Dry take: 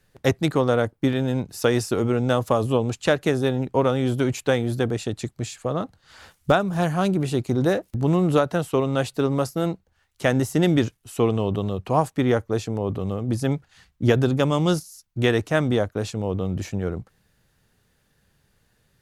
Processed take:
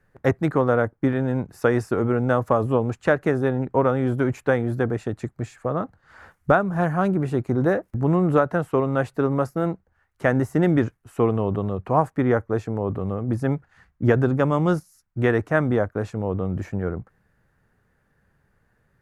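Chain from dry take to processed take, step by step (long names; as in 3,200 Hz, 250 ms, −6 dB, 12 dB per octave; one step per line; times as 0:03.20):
high shelf with overshoot 2,400 Hz −12 dB, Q 1.5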